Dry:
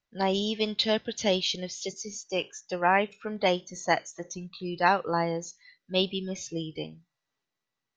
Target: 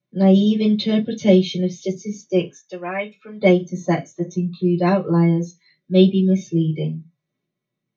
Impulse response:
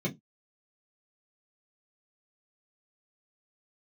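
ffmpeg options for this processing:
-filter_complex "[0:a]asettb=1/sr,asplit=3[a][b][c];[a]atrim=end=2.514[d];[b]atrim=start=2.51:end=3.41,asetpts=PTS-STARTPTS,afade=t=in:d=0.004:c=qsin,afade=t=out:st=0.896:d=0.004:c=qsin,highpass=f=1.5k:p=1[e];[c]atrim=start=3.406[f];[d][e]acrossfade=d=0.004:c1=hsin:c2=qsin[g];[g][f]acrossfade=d=0.004:c1=qsin:c2=hsin[h];[1:a]atrim=start_sample=2205,atrim=end_sample=3969[i];[h][i]afir=irnorm=-1:irlink=0,volume=-2.5dB"

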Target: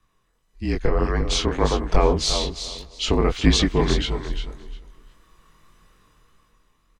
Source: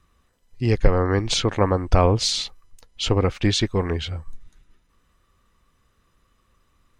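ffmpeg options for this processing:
-filter_complex "[0:a]dynaudnorm=f=210:g=11:m=12.5dB,asplit=2[a][b];[b]aecho=0:1:351|702|1053:0.355|0.0639|0.0115[c];[a][c]amix=inputs=2:normalize=0,flanger=delay=19:depth=5.8:speed=1.7,asplit=2[d][e];[e]adelay=283,lowpass=f=3.2k:p=1,volume=-23.5dB,asplit=2[f][g];[g]adelay=283,lowpass=f=3.2k:p=1,volume=0.5,asplit=2[h][i];[i]adelay=283,lowpass=f=3.2k:p=1,volume=0.5[j];[f][h][j]amix=inputs=3:normalize=0[k];[d][k]amix=inputs=2:normalize=0,afreqshift=-41"

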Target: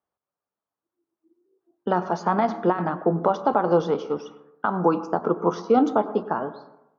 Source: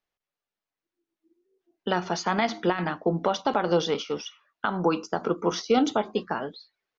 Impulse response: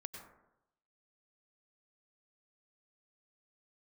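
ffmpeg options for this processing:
-filter_complex "[0:a]highpass=77,highshelf=f=1.6k:t=q:w=1.5:g=-10,asplit=2[a][b];[1:a]atrim=start_sample=2205,lowpass=2.9k[c];[b][c]afir=irnorm=-1:irlink=0,volume=-3.5dB[d];[a][d]amix=inputs=2:normalize=0"

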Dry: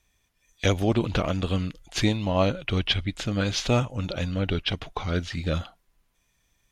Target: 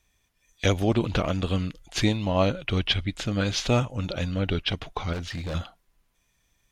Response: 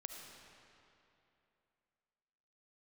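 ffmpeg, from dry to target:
-filter_complex "[0:a]asettb=1/sr,asplit=3[a][b][c];[a]atrim=end=5.134[d];[b]atrim=start=5.13:end=5.55,asetpts=PTS-STARTPTS,afade=t=in:d=0.004:c=qsin,afade=t=out:st=0.416:d=0.004:c=qsin,asoftclip=type=hard:threshold=-29dB[e];[c]atrim=start=5.546[f];[d][e]acrossfade=d=0.004:c1=hsin:c2=qsin[g];[g][f]acrossfade=d=0.004:c1=qsin:c2=hsin"

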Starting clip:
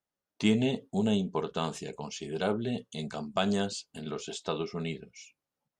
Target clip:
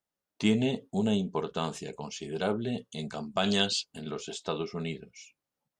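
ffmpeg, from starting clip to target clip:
-filter_complex "[0:a]asplit=3[a][b][c];[a]afade=t=out:st=3.43:d=0.02[d];[b]equalizer=f=3.2k:t=o:w=1.6:g=13.5,afade=t=in:st=3.43:d=0.02,afade=t=out:st=3.83:d=0.02[e];[c]afade=t=in:st=3.83:d=0.02[f];[d][e][f]amix=inputs=3:normalize=0"

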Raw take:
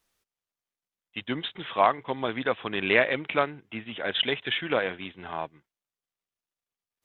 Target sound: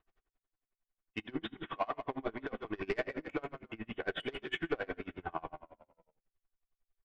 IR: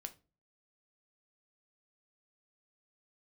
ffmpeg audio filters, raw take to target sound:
-filter_complex "[0:a]lowpass=1.8k,lowshelf=f=140:g=4.5,aecho=1:1:2.7:0.36,asubboost=boost=6.5:cutoff=51,asplit=2[a][b];[b]acompressor=threshold=-39dB:ratio=6,volume=1dB[c];[a][c]amix=inputs=2:normalize=0,alimiter=limit=-13dB:level=0:latency=1:release=295,asoftclip=type=tanh:threshold=-19.5dB,asplit=6[d][e][f][g][h][i];[e]adelay=140,afreqshift=-38,volume=-11.5dB[j];[f]adelay=280,afreqshift=-76,volume=-18.4dB[k];[g]adelay=420,afreqshift=-114,volume=-25.4dB[l];[h]adelay=560,afreqshift=-152,volume=-32.3dB[m];[i]adelay=700,afreqshift=-190,volume=-39.2dB[n];[d][j][k][l][m][n]amix=inputs=6:normalize=0[o];[1:a]atrim=start_sample=2205[p];[o][p]afir=irnorm=-1:irlink=0,aeval=exprs='val(0)*pow(10,-30*(0.5-0.5*cos(2*PI*11*n/s))/20)':c=same,volume=2.5dB"

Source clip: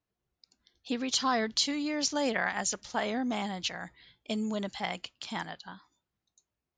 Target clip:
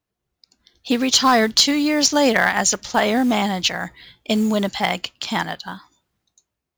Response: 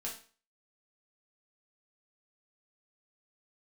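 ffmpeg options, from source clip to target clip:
-af "aeval=exprs='clip(val(0),-1,0.0841)':c=same,acrusher=bits=6:mode=log:mix=0:aa=0.000001,dynaudnorm=f=110:g=11:m=8.5dB,volume=5dB"

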